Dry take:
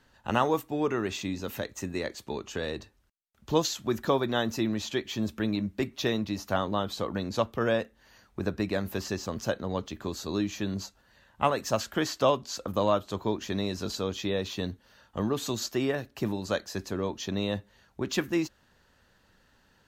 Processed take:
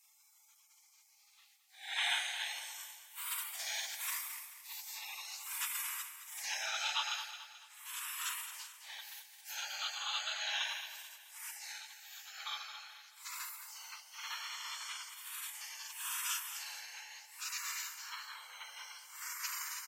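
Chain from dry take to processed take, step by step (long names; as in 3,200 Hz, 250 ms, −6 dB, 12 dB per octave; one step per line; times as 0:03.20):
extreme stretch with random phases 5.7×, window 0.05 s, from 0:11.09
in parallel at −1 dB: downward compressor, threshold −36 dBFS, peak gain reduction 18.5 dB
on the sum: Chebyshev high-pass with heavy ripple 940 Hz, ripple 6 dB
gate on every frequency bin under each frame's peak −25 dB weak
on a send: repeating echo 217 ms, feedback 43%, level −11 dB
on the sum: level +12.5 dB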